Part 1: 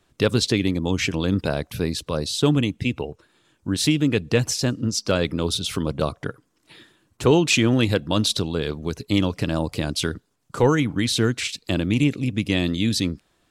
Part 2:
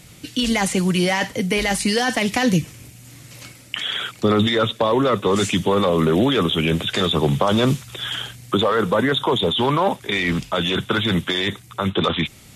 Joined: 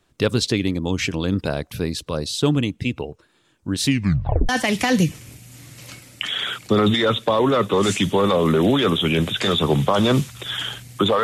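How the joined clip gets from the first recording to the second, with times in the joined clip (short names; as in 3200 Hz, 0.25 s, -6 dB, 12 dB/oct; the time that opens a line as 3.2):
part 1
3.84 tape stop 0.65 s
4.49 switch to part 2 from 2.02 s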